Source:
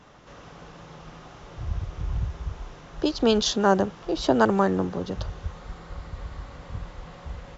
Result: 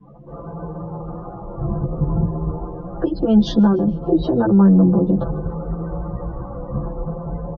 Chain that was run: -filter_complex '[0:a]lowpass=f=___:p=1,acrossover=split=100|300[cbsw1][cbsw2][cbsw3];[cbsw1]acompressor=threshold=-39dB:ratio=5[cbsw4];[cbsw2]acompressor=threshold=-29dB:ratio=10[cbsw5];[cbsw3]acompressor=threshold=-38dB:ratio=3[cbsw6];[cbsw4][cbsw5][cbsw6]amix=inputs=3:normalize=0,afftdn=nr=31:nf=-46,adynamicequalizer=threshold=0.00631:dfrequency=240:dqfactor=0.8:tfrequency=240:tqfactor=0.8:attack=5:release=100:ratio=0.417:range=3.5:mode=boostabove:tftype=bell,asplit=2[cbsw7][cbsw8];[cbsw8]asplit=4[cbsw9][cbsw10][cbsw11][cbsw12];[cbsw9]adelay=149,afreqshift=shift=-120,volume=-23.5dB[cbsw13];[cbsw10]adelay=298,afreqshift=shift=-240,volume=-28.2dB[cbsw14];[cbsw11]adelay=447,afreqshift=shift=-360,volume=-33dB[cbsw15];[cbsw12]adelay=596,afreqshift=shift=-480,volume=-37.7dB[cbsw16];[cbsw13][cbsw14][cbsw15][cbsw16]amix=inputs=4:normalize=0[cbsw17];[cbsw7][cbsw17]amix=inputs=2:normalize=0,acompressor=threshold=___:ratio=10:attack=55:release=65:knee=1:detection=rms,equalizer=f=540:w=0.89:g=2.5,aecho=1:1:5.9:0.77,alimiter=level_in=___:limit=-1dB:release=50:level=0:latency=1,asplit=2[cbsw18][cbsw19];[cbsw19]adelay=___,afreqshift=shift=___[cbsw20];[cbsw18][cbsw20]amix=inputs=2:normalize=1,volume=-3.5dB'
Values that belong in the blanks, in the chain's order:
1200, -26dB, 18.5dB, 11.6, 0.59